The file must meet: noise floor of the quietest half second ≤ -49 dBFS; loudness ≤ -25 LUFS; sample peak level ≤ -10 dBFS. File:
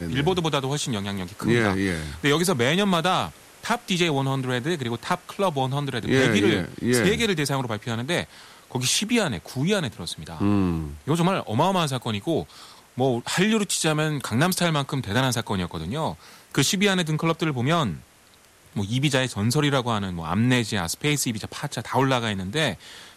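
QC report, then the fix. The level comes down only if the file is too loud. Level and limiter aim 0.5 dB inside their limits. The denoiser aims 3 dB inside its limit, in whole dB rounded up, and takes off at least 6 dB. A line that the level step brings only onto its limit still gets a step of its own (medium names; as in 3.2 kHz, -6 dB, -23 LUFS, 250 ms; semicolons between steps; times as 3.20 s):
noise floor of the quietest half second -54 dBFS: pass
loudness -24.0 LUFS: fail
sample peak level -7.5 dBFS: fail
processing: trim -1.5 dB; peak limiter -10.5 dBFS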